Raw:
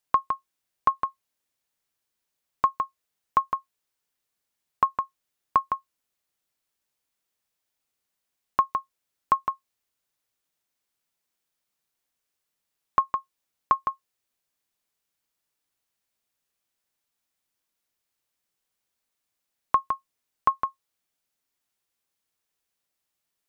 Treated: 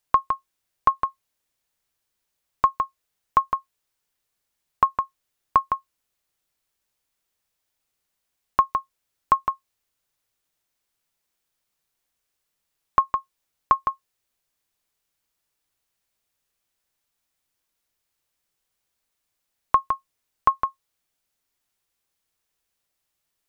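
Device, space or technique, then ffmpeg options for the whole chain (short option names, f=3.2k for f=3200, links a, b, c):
low shelf boost with a cut just above: -af "lowshelf=f=78:g=7.5,equalizer=f=230:t=o:w=0.61:g=-2.5,volume=3dB"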